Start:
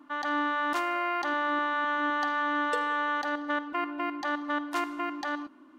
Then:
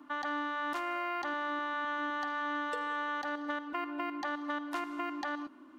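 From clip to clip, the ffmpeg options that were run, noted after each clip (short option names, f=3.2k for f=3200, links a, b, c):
-filter_complex "[0:a]acrossover=split=180|4000[a][b][c];[a]acompressor=threshold=-58dB:ratio=4[d];[b]acompressor=threshold=-34dB:ratio=4[e];[c]acompressor=threshold=-56dB:ratio=4[f];[d][e][f]amix=inputs=3:normalize=0"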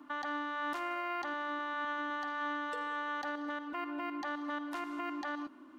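-af "alimiter=level_in=6.5dB:limit=-24dB:level=0:latency=1:release=31,volume=-6.5dB"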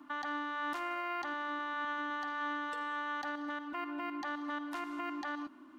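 -af "equalizer=f=490:t=o:w=0.37:g=-10"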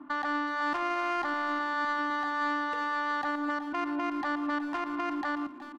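-filter_complex "[0:a]adynamicsmooth=sensitivity=5.5:basefreq=1.5k,asplit=2[a][b];[b]adelay=370,highpass=300,lowpass=3.4k,asoftclip=type=hard:threshold=-39dB,volume=-12dB[c];[a][c]amix=inputs=2:normalize=0,volume=8dB"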